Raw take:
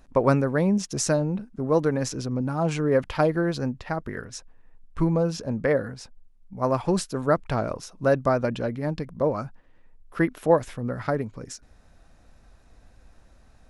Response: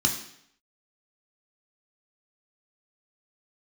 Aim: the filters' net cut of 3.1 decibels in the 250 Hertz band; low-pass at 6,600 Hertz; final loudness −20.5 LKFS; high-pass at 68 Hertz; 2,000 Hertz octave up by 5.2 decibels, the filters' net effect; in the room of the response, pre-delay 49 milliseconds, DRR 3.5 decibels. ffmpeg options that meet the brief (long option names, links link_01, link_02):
-filter_complex "[0:a]highpass=68,lowpass=6600,equalizer=frequency=250:width_type=o:gain=-4.5,equalizer=frequency=2000:width_type=o:gain=7,asplit=2[link_01][link_02];[1:a]atrim=start_sample=2205,adelay=49[link_03];[link_02][link_03]afir=irnorm=-1:irlink=0,volume=-13.5dB[link_04];[link_01][link_04]amix=inputs=2:normalize=0,volume=3.5dB"